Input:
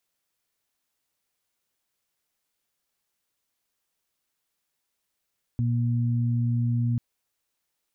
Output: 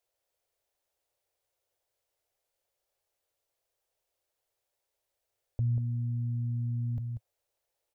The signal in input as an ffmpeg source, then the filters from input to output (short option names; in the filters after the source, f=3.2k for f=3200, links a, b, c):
-f lavfi -i "aevalsrc='0.0794*sin(2*PI*119*t)+0.0335*sin(2*PI*238*t)':d=1.39:s=44100"
-filter_complex "[0:a]firequalizer=gain_entry='entry(110,0);entry(190,-21);entry(350,-2);entry(550,7);entry(1100,-6)':delay=0.05:min_phase=1,asplit=2[a][b];[b]aecho=0:1:189:0.398[c];[a][c]amix=inputs=2:normalize=0"